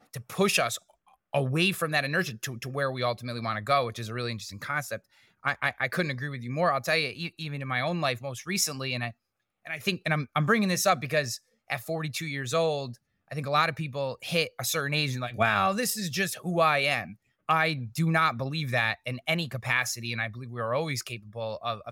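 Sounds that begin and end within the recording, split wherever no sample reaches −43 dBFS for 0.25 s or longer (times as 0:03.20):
0:01.33–0:04.98
0:05.44–0:09.11
0:09.66–0:11.37
0:11.70–0:12.95
0:13.31–0:17.13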